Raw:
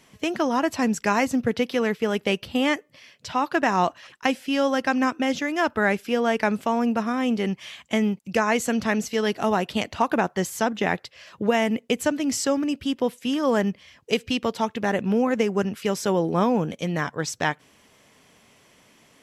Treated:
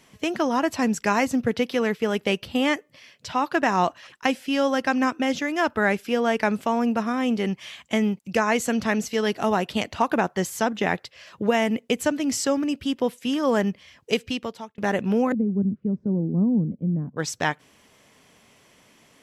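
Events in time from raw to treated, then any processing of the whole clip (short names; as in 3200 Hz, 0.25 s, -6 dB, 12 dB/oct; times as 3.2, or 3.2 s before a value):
14.14–14.78 fade out
15.32–17.17 synth low-pass 220 Hz, resonance Q 1.6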